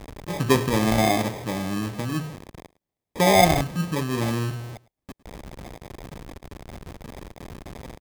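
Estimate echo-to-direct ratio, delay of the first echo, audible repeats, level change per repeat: -22.0 dB, 0.107 s, 1, no steady repeat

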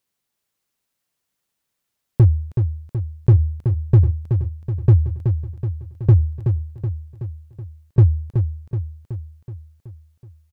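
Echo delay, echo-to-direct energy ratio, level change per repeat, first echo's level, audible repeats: 0.375 s, -5.5 dB, -5.0 dB, -7.0 dB, 6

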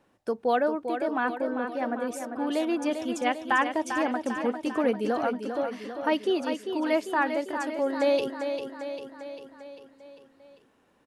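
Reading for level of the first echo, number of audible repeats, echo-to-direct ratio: -7.5 dB, 6, -5.5 dB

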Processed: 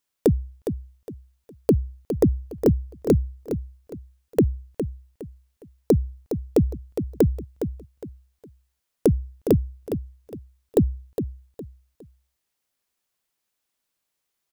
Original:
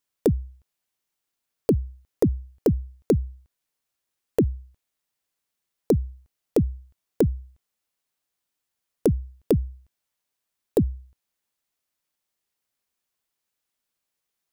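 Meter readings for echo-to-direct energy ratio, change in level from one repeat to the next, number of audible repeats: -8.5 dB, -10.5 dB, 3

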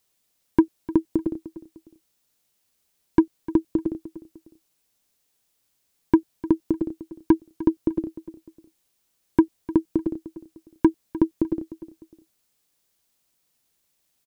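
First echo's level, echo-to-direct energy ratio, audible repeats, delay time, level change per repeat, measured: -16.0 dB, -15.5 dB, 2, 0.302 s, -9.0 dB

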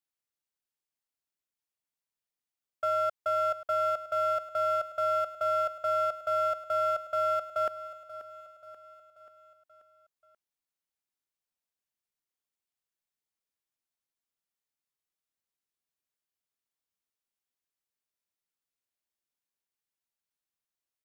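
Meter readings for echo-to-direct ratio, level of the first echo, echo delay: -13.0 dB, -14.5 dB, 0.534 s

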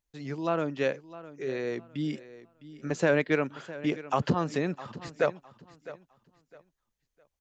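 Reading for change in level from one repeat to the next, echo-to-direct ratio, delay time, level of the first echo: -11.5 dB, -16.0 dB, 0.658 s, -16.5 dB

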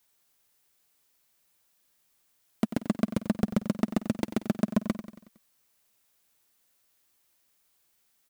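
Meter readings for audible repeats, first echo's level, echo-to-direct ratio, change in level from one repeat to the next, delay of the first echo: 5, -12.5 dB, -11.0 dB, -5.5 dB, 92 ms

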